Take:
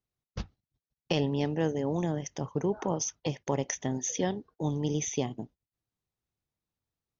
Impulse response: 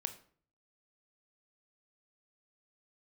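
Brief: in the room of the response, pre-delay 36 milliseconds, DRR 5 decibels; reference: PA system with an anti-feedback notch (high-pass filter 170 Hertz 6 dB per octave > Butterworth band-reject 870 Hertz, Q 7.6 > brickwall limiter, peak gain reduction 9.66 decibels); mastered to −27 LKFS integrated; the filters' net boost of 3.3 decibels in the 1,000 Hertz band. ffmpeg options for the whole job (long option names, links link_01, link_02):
-filter_complex "[0:a]equalizer=frequency=1000:width_type=o:gain=7,asplit=2[link_01][link_02];[1:a]atrim=start_sample=2205,adelay=36[link_03];[link_02][link_03]afir=irnorm=-1:irlink=0,volume=-4dB[link_04];[link_01][link_04]amix=inputs=2:normalize=0,highpass=frequency=170:poles=1,asuperstop=centerf=870:order=8:qfactor=7.6,volume=6dB,alimiter=limit=-16dB:level=0:latency=1"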